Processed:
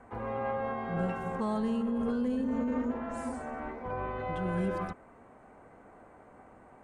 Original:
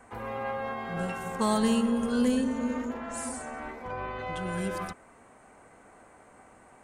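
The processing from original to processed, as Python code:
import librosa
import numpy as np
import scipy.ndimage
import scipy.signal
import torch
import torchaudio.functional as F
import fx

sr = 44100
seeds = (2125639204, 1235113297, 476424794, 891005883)

p1 = fx.lowpass(x, sr, hz=1000.0, slope=6)
p2 = fx.over_compress(p1, sr, threshold_db=-31.0, ratio=-0.5)
p3 = p1 + F.gain(torch.from_numpy(p2), 2.5).numpy()
y = F.gain(torch.from_numpy(p3), -7.0).numpy()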